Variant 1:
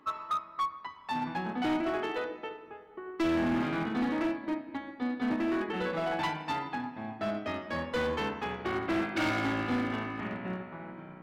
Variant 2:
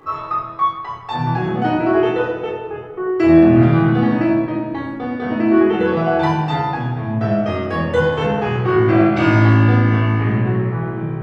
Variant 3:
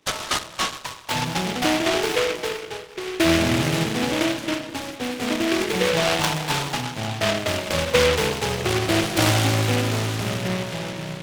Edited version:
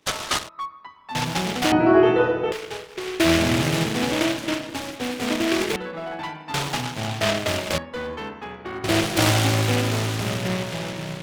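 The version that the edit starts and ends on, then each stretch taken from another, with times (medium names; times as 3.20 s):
3
0.49–1.15 s: from 1
1.72–2.52 s: from 2
5.76–6.54 s: from 1
7.78–8.84 s: from 1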